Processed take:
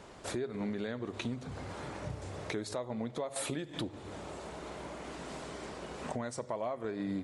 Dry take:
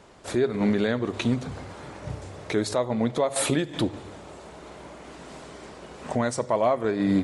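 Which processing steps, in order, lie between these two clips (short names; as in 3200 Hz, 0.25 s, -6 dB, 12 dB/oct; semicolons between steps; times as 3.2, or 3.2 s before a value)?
compressor 3:1, threshold -38 dBFS, peak gain reduction 15 dB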